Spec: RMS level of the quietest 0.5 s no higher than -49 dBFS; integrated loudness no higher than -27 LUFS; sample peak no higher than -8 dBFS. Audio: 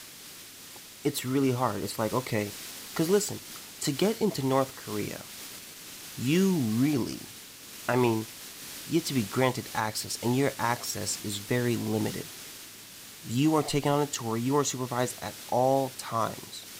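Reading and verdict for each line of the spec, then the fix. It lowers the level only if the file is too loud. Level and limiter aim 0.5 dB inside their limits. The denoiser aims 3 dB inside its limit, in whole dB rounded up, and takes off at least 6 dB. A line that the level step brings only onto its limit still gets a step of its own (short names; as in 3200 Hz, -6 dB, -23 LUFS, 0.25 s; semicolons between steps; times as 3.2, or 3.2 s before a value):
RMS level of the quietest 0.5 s -47 dBFS: fail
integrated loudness -29.0 LUFS: OK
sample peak -11.5 dBFS: OK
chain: denoiser 6 dB, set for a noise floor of -47 dBFS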